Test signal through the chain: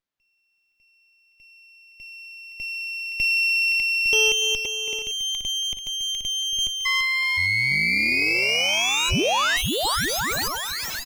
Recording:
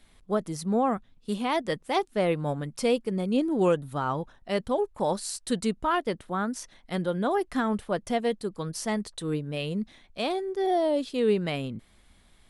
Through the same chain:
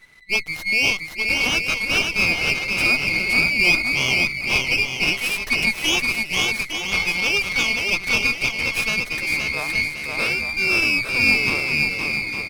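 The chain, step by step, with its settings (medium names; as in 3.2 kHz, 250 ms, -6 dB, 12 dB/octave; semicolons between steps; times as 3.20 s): split-band scrambler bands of 2 kHz; bouncing-ball echo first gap 520 ms, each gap 0.65×, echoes 5; sliding maximum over 5 samples; trim +6 dB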